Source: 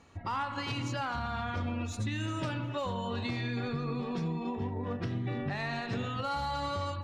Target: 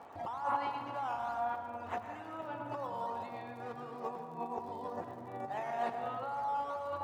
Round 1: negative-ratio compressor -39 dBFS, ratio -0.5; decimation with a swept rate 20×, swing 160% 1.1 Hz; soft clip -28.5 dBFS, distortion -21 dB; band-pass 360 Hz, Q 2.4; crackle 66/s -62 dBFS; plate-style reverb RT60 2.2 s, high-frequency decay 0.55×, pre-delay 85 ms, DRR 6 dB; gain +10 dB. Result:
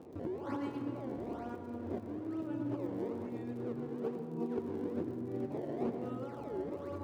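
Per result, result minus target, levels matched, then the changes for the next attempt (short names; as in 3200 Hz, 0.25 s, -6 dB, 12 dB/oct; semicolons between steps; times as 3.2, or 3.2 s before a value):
1000 Hz band -12.5 dB; decimation with a swept rate: distortion +8 dB
change: band-pass 770 Hz, Q 2.4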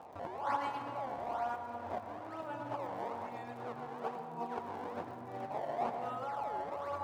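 decimation with a swept rate: distortion +8 dB
change: decimation with a swept rate 6×, swing 160% 1.1 Hz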